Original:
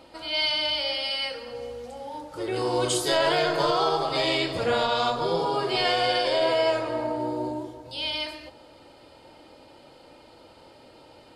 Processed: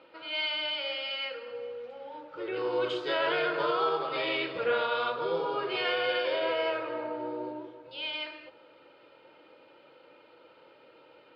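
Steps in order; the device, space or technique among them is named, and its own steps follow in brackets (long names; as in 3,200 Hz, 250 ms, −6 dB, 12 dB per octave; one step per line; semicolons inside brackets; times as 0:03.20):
kitchen radio (loudspeaker in its box 210–3,500 Hz, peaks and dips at 240 Hz −7 dB, 490 Hz +5 dB, 730 Hz −7 dB, 1,400 Hz +7 dB, 2,500 Hz +5 dB)
level −6 dB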